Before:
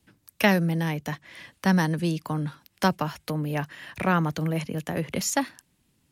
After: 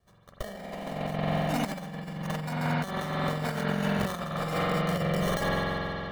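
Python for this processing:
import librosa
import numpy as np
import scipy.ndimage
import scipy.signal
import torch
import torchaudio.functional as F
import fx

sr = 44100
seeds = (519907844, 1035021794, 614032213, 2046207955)

y = fx.echo_wet_highpass(x, sr, ms=146, feedback_pct=42, hz=5000.0, wet_db=-3.0)
y = fx.sample_hold(y, sr, seeds[0], rate_hz=2500.0, jitter_pct=0)
y = y + 0.75 * np.pad(y, (int(1.7 * sr / 1000.0), 0))[:len(y)]
y = fx.echo_pitch(y, sr, ms=222, semitones=4, count=2, db_per_echo=-6.0)
y = fx.rev_spring(y, sr, rt60_s=3.6, pass_ms=(45,), chirp_ms=30, drr_db=-4.5)
y = fx.over_compress(y, sr, threshold_db=-22.0, ratio=-0.5)
y = y * 10.0 ** (-7.5 / 20.0)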